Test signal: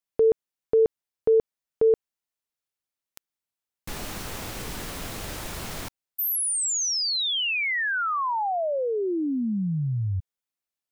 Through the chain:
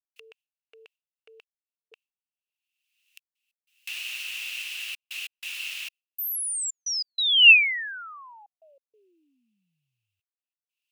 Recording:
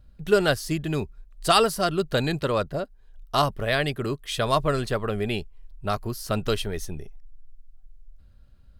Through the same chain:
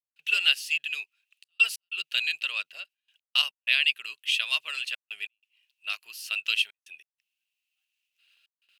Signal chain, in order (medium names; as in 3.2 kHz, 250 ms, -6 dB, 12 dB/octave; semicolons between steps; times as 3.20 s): gate with hold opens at -44 dBFS, hold 57 ms, range -19 dB; upward compressor, threshold -32 dBFS; resonant high-pass 2.7 kHz, resonance Q 11; trance gate ".xxxxxxxx.x" 94 bpm -60 dB; trim -4 dB